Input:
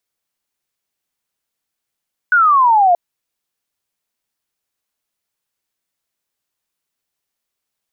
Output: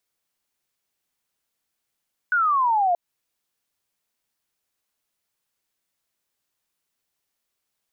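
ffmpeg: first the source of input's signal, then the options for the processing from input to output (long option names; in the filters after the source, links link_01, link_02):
-f lavfi -i "aevalsrc='0.398*clip(t/0.002,0,1)*clip((0.63-t)/0.002,0,1)*sin(2*PI*1500*0.63/log(680/1500)*(exp(log(680/1500)*t/0.63)-1))':duration=0.63:sample_rate=44100"
-af "alimiter=limit=-17dB:level=0:latency=1:release=145"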